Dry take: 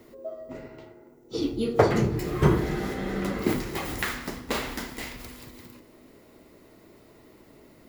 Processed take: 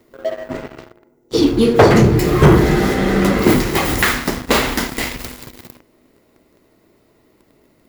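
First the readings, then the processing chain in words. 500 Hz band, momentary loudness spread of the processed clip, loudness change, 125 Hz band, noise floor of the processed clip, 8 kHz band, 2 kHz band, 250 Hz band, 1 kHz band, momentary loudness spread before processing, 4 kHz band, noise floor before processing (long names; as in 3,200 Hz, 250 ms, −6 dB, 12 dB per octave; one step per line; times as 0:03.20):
+12.5 dB, 16 LU, +13.0 dB, +12.5 dB, −57 dBFS, +14.5 dB, +14.0 dB, +13.5 dB, +12.5 dB, 19 LU, +14.5 dB, −55 dBFS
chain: leveller curve on the samples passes 3
level +3.5 dB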